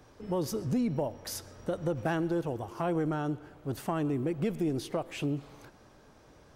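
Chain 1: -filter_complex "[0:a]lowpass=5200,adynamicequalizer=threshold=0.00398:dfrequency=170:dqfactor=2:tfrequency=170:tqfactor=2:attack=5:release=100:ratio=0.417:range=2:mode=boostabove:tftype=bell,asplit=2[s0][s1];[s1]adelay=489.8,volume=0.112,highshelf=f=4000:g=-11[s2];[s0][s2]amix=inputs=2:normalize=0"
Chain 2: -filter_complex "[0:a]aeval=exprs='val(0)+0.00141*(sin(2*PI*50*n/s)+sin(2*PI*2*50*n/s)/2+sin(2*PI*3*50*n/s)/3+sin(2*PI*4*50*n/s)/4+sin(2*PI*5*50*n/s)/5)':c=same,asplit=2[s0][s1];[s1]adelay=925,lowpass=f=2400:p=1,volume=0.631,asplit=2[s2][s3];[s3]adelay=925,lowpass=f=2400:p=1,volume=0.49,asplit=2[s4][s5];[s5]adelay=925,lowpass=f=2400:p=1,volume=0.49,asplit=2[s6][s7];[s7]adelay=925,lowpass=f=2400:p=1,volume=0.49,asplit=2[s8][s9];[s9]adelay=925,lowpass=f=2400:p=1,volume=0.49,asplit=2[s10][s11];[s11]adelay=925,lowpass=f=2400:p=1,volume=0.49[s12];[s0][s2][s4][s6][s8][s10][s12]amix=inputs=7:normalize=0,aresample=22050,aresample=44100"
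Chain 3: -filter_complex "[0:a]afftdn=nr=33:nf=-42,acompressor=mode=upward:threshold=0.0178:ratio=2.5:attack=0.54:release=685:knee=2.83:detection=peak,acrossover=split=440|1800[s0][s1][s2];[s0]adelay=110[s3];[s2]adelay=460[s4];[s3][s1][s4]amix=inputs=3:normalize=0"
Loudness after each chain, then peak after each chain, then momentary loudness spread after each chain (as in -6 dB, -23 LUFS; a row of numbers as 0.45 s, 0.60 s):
-31.5 LUFS, -32.0 LUFS, -34.5 LUFS; -18.5 dBFS, -17.5 dBFS, -20.0 dBFS; 11 LU, 6 LU, 8 LU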